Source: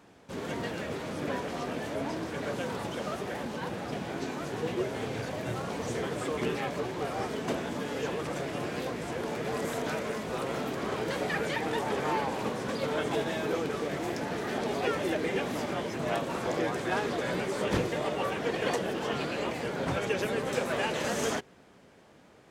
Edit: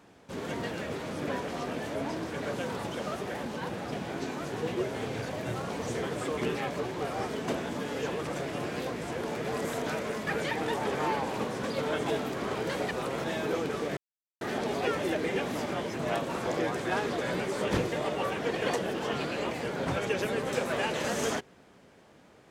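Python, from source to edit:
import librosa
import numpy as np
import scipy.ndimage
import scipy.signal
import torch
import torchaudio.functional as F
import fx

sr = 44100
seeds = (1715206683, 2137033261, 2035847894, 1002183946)

y = fx.edit(x, sr, fx.swap(start_s=10.27, length_s=0.33, other_s=11.32, other_length_s=1.92),
    fx.silence(start_s=13.97, length_s=0.44), tone=tone)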